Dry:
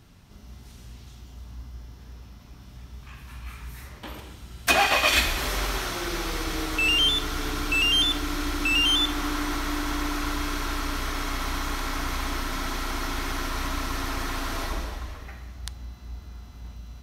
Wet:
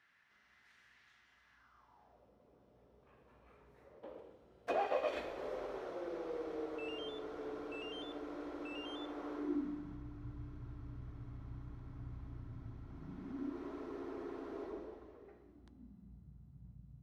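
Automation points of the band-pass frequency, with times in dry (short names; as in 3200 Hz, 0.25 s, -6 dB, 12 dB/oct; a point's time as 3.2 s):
band-pass, Q 4.7
1.52 s 1800 Hz
2.32 s 500 Hz
9.32 s 500 Hz
10.04 s 110 Hz
12.83 s 110 Hz
13.7 s 400 Hz
15.37 s 400 Hz
16.3 s 140 Hz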